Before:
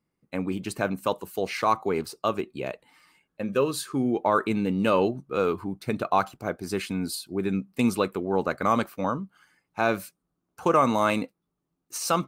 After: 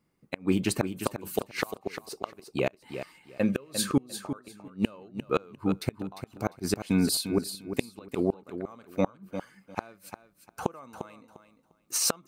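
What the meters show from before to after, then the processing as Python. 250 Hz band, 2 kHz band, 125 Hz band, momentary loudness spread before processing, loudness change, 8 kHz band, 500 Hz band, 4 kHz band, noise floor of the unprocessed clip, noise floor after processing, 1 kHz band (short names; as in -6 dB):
-2.5 dB, -6.5 dB, -1.5 dB, 11 LU, -4.5 dB, +4.5 dB, -6.5 dB, +1.5 dB, -81 dBFS, -69 dBFS, -12.5 dB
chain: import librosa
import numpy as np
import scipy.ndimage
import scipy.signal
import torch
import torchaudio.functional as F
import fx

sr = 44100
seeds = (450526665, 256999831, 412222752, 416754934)

y = fx.gate_flip(x, sr, shuts_db=-17.0, range_db=-32)
y = fx.echo_feedback(y, sr, ms=350, feedback_pct=20, wet_db=-9.5)
y = F.gain(torch.from_numpy(y), 5.5).numpy()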